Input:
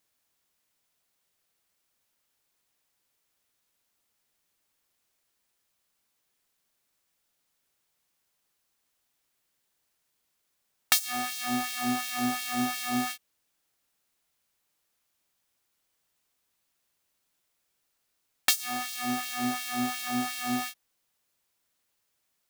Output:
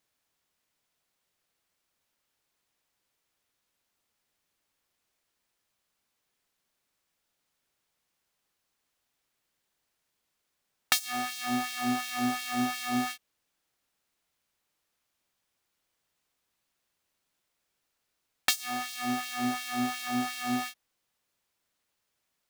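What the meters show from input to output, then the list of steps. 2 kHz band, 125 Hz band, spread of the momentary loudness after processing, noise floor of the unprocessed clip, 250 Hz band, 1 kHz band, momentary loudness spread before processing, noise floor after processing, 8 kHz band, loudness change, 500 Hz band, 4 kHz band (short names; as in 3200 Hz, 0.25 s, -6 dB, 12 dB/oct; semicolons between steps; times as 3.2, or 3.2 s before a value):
-0.5 dB, 0.0 dB, 5 LU, -77 dBFS, 0.0 dB, 0.0 dB, 6 LU, -81 dBFS, -3.5 dB, -1.5 dB, 0.0 dB, -1.5 dB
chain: high shelf 6900 Hz -6.5 dB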